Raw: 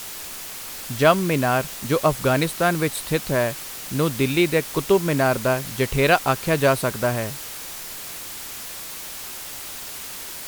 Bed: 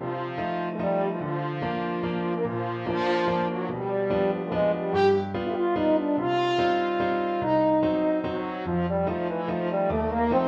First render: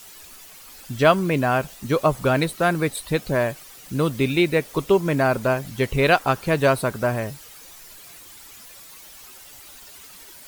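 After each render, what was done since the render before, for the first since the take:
broadband denoise 12 dB, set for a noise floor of −35 dBFS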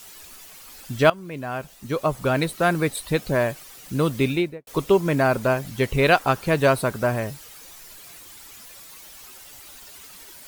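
0:01.10–0:02.69: fade in, from −19 dB
0:04.24–0:04.67: fade out and dull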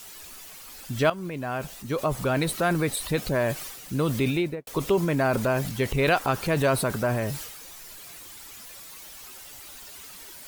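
downward compressor 1.5 to 1, threshold −26 dBFS, peak gain reduction 6 dB
transient designer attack −1 dB, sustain +7 dB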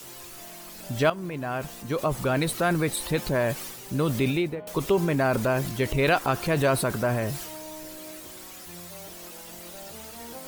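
mix in bed −20 dB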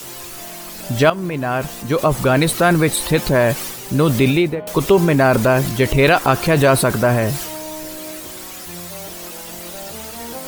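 level +10 dB
brickwall limiter −2 dBFS, peak gain reduction 2.5 dB

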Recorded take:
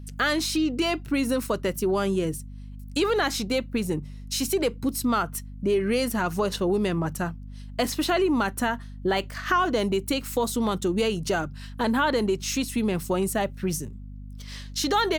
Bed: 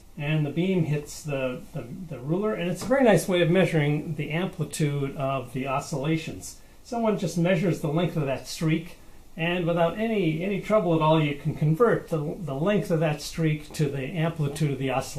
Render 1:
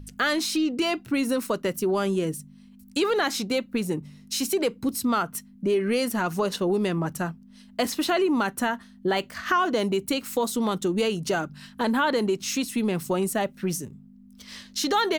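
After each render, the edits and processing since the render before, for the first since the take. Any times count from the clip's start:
hum removal 50 Hz, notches 3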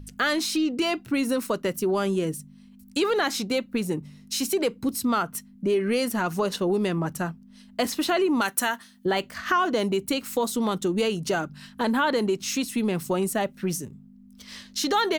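0:08.41–0:09.06: spectral tilt +3 dB per octave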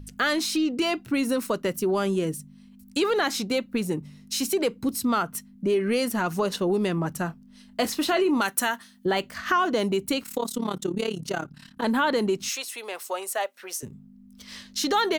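0:07.27–0:08.41: double-tracking delay 27 ms −11 dB
0:10.23–0:11.84: amplitude modulation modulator 35 Hz, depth 75%
0:12.49–0:13.83: high-pass filter 530 Hz 24 dB per octave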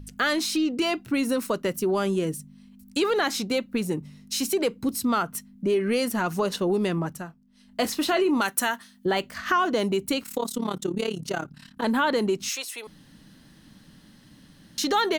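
0:06.98–0:07.82: duck −10.5 dB, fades 0.29 s
0:12.87–0:14.78: fill with room tone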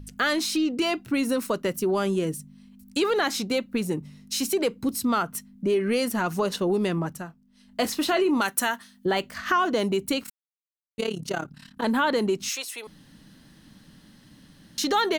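0:10.30–0:10.98: silence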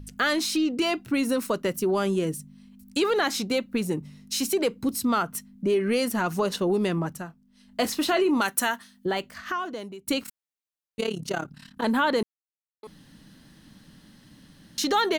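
0:08.72–0:10.07: fade out, to −22 dB
0:12.23–0:12.83: silence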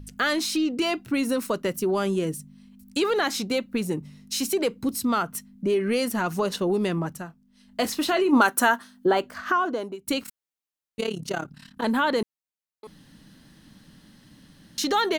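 0:08.33–0:09.95: gain on a spectral selection 220–1,700 Hz +7 dB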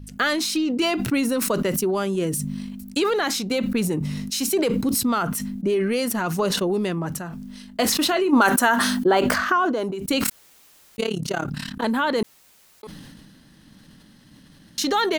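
transient designer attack +3 dB, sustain −2 dB
level that may fall only so fast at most 26 dB per second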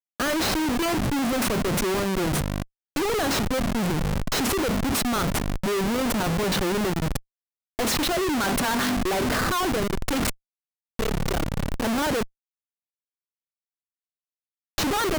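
comparator with hysteresis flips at −24.5 dBFS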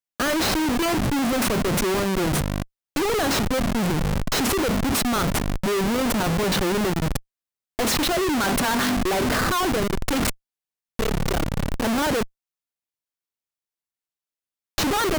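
level +2 dB

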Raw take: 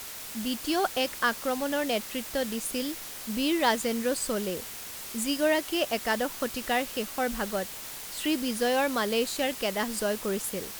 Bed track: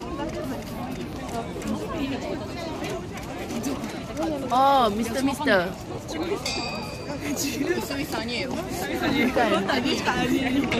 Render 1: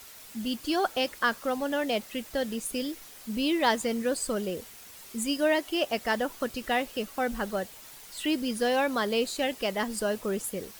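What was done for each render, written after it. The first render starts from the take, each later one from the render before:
broadband denoise 9 dB, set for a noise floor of −40 dBFS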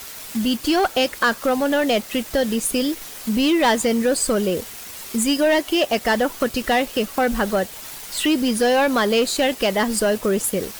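leveller curve on the samples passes 2
in parallel at +2 dB: downward compressor, threshold −29 dBFS, peak gain reduction 12 dB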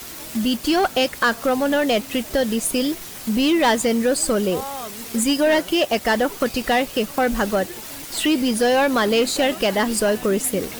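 mix in bed track −13 dB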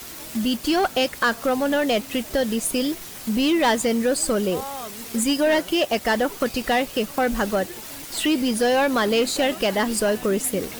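level −2 dB

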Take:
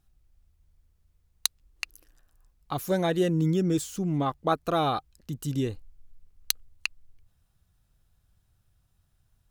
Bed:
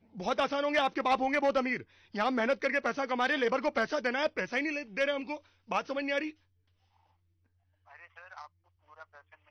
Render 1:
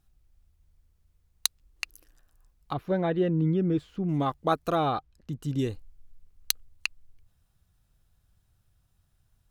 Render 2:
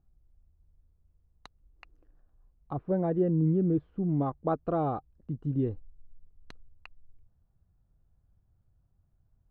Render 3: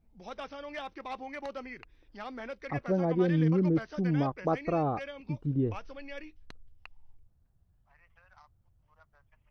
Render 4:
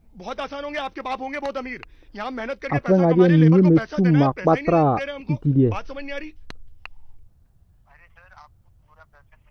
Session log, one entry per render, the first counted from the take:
0:02.73–0:04.09: high-frequency loss of the air 410 metres; 0:04.75–0:05.59: low-pass filter 2,400 Hz 6 dB per octave
Bessel low-pass filter 650 Hz, order 2
mix in bed −12 dB
level +11.5 dB

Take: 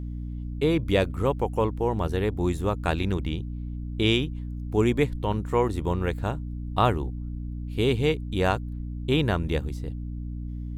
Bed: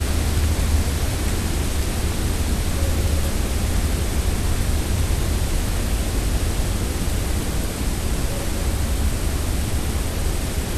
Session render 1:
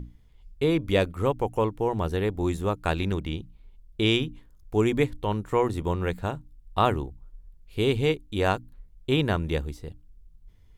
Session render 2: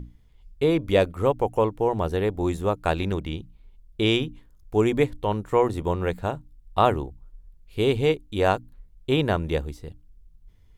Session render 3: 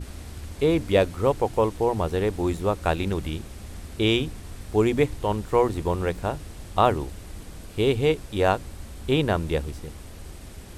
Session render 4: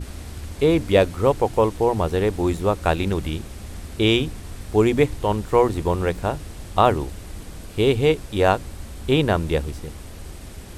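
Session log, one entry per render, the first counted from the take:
mains-hum notches 60/120/180/240/300 Hz
dynamic equaliser 620 Hz, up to +5 dB, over −37 dBFS, Q 1.1
mix in bed −18 dB
level +3.5 dB; brickwall limiter −3 dBFS, peak gain reduction 1 dB

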